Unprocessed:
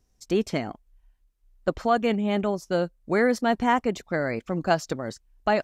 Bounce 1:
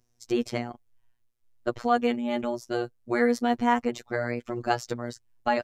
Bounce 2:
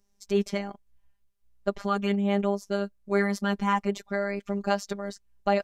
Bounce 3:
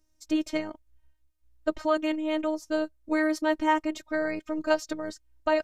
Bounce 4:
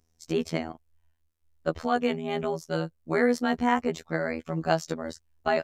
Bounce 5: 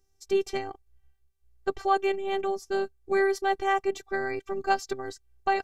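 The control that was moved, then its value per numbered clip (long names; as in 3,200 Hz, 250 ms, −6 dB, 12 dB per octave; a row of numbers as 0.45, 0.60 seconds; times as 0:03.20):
phases set to zero, frequency: 120, 200, 310, 81, 390 Hertz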